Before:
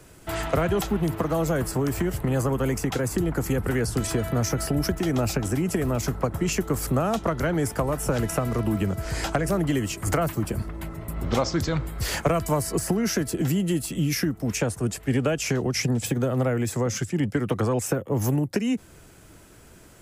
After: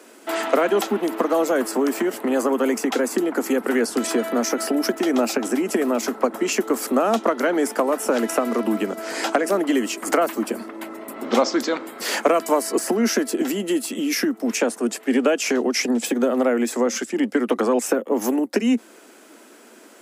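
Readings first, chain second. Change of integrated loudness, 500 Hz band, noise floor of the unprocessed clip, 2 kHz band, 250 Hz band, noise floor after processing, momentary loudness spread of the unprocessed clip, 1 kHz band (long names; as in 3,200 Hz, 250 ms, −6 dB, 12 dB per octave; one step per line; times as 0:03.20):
+4.0 dB, +6.5 dB, −50 dBFS, +5.5 dB, +4.5 dB, −48 dBFS, 3 LU, +6.0 dB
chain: elliptic high-pass filter 230 Hz, stop band 40 dB
high-shelf EQ 7,200 Hz −4.5 dB
level +6.5 dB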